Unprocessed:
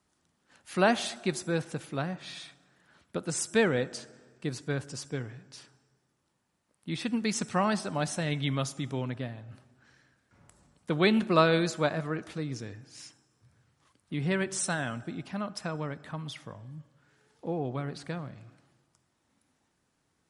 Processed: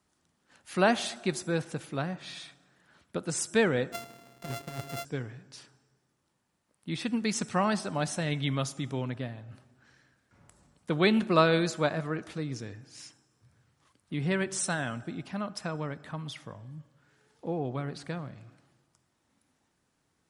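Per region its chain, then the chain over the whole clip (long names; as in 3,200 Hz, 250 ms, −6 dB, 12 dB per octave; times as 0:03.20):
0:03.92–0:05.05: samples sorted by size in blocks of 64 samples + compressor whose output falls as the input rises −34 dBFS, ratio −0.5
whole clip: no processing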